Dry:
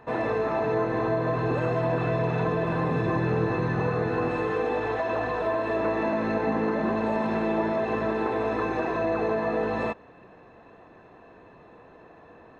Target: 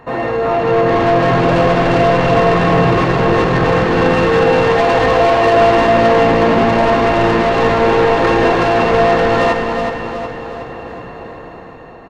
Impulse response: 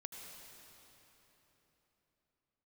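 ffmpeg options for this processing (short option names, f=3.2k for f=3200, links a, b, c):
-filter_complex "[0:a]dynaudnorm=f=130:g=13:m=9.5dB,asoftclip=type=tanh:threshold=-20.5dB,aecho=1:1:384|768|1152|1536|1920|2304:0.447|0.223|0.112|0.0558|0.0279|0.014,asplit=2[a][b];[1:a]atrim=start_sample=2205,lowshelf=f=62:g=10[c];[b][c]afir=irnorm=-1:irlink=0,volume=5dB[d];[a][d]amix=inputs=2:normalize=0,asetrate=45938,aresample=44100,volume=3.5dB"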